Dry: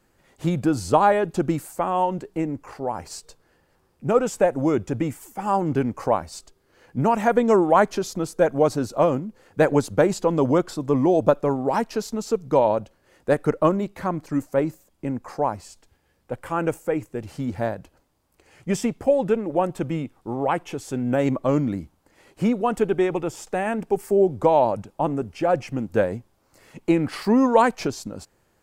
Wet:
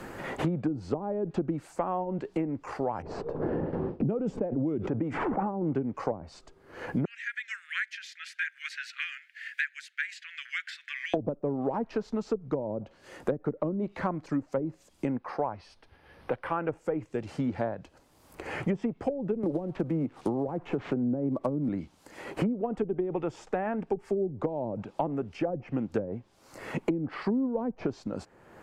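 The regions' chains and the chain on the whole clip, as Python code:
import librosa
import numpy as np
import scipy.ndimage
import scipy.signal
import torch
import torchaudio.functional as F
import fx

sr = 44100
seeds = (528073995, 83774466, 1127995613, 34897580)

y = fx.chain(x, sr, fx.gate_hold(open_db=-53.0, close_db=-58.0, hold_ms=71.0, range_db=-21, attack_ms=1.4, release_ms=100.0),
    fx.env_lowpass(base_hz=380.0, full_db=-20.0),
    fx.pre_swell(db_per_s=22.0), at=(3.02, 5.67))
y = fx.chain(y, sr, fx.steep_highpass(hz=1700.0, slope=72),
    fx.high_shelf(hz=6700.0, db=-9.0), at=(7.05, 11.14))
y = fx.chain(y, sr, fx.moving_average(points=6),
    fx.low_shelf(hz=430.0, db=-7.0), at=(15.17, 16.69))
y = fx.chain(y, sr, fx.peak_eq(hz=4200.0, db=-13.0, octaves=1.2),
    fx.sample_hold(seeds[0], rate_hz=9800.0, jitter_pct=20),
    fx.band_squash(depth_pct=100), at=(19.43, 21.69))
y = fx.env_lowpass_down(y, sr, base_hz=340.0, full_db=-16.0)
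y = fx.low_shelf(y, sr, hz=96.0, db=-8.0)
y = fx.band_squash(y, sr, depth_pct=100)
y = F.gain(torch.from_numpy(y), -5.5).numpy()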